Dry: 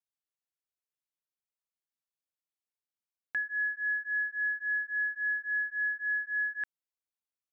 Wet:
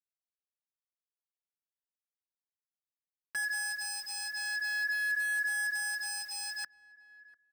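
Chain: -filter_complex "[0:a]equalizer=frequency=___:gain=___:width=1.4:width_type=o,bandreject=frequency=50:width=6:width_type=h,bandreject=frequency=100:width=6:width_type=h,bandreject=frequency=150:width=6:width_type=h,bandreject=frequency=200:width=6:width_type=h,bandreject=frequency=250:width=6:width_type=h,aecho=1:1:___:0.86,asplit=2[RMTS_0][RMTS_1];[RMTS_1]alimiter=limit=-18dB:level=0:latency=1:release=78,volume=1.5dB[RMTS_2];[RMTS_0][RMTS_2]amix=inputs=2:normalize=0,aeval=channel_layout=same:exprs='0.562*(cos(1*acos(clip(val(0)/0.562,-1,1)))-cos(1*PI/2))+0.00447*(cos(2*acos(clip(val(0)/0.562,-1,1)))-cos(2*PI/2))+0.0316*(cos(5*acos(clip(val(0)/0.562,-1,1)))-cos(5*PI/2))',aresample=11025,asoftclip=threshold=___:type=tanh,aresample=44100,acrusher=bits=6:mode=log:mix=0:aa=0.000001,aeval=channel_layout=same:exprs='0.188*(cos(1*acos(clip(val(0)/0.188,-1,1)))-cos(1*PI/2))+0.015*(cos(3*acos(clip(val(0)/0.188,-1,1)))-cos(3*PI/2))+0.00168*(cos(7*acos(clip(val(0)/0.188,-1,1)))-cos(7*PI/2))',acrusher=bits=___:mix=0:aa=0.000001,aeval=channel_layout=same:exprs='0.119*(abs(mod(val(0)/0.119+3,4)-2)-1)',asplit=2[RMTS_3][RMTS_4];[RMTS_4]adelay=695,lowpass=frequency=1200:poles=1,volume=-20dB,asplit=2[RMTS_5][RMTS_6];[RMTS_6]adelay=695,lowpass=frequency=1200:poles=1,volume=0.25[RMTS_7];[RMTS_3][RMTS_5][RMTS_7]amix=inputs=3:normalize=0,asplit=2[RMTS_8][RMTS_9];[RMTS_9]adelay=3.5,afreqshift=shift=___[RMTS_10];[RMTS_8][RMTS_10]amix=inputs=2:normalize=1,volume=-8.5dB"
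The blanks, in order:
1500, 13.5, 5.3, -15.5dB, 6, -0.44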